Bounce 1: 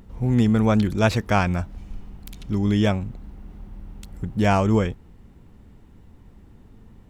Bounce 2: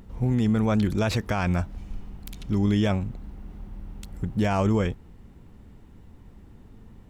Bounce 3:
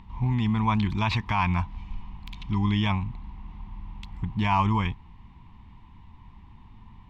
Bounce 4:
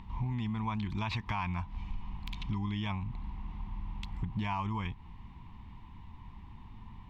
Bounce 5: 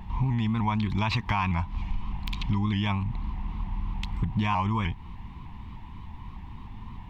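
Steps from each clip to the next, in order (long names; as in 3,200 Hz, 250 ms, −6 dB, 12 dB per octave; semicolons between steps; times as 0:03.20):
brickwall limiter −15 dBFS, peak gain reduction 9 dB
drawn EQ curve 120 Hz 0 dB, 210 Hz −3 dB, 350 Hz −9 dB, 540 Hz −20 dB, 1,000 Hz +14 dB, 1,400 Hz −7 dB, 2,200 Hz +6 dB, 3,600 Hz +3 dB, 9,500 Hz −20 dB
downward compressor 8 to 1, threshold −31 dBFS, peak gain reduction 13 dB
pitch modulation by a square or saw wave saw up 3.3 Hz, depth 100 cents; level +8 dB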